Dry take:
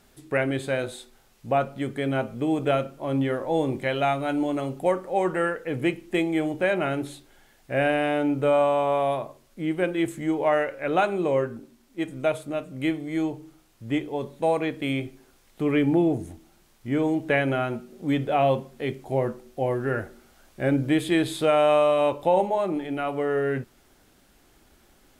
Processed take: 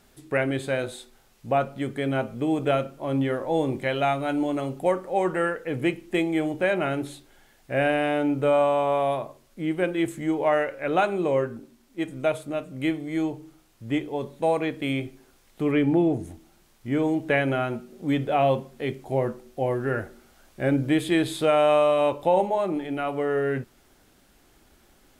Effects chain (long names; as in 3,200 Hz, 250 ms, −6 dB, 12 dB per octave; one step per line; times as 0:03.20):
0:15.71–0:16.23: high-shelf EQ 5,300 Hz → 9,000 Hz −6.5 dB